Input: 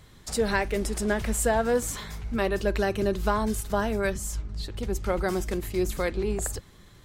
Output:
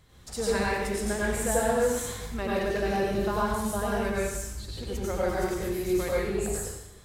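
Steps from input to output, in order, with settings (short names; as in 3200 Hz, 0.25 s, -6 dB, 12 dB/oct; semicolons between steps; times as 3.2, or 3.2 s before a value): plate-style reverb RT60 0.89 s, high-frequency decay 1×, pre-delay 80 ms, DRR -6 dB; gain -7.5 dB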